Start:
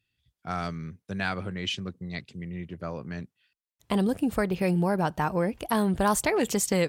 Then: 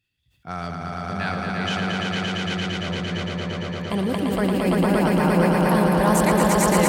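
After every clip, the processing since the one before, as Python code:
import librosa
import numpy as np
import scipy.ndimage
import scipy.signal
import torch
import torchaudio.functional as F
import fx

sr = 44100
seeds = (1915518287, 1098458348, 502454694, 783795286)

y = fx.echo_swell(x, sr, ms=114, loudest=5, wet_db=-3.0)
y = fx.sustainer(y, sr, db_per_s=20.0)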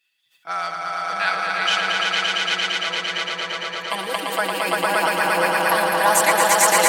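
y = scipy.signal.sosfilt(scipy.signal.butter(2, 870.0, 'highpass', fs=sr, output='sos'), x)
y = y + 0.95 * np.pad(y, (int(6.1 * sr / 1000.0), 0))[:len(y)]
y = y * 10.0 ** (5.5 / 20.0)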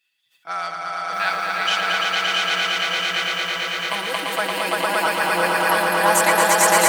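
y = fx.echo_crushed(x, sr, ms=661, feedback_pct=55, bits=7, wet_db=-3.5)
y = y * 10.0 ** (-1.0 / 20.0)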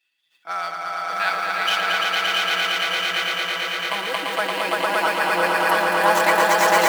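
y = scipy.ndimage.median_filter(x, 5, mode='constant')
y = scipy.signal.sosfilt(scipy.signal.butter(2, 190.0, 'highpass', fs=sr, output='sos'), y)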